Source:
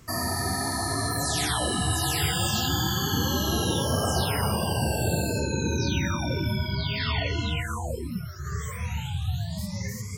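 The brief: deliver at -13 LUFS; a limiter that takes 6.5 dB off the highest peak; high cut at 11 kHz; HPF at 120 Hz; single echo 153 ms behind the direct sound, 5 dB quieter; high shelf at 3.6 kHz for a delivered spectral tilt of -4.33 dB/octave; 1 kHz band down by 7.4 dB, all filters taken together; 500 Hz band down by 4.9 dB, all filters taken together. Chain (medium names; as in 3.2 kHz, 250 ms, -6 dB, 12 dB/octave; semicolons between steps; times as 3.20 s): high-pass 120 Hz; low-pass 11 kHz; peaking EQ 500 Hz -4 dB; peaking EQ 1 kHz -8 dB; treble shelf 3.6 kHz -7 dB; peak limiter -23 dBFS; delay 153 ms -5 dB; trim +18.5 dB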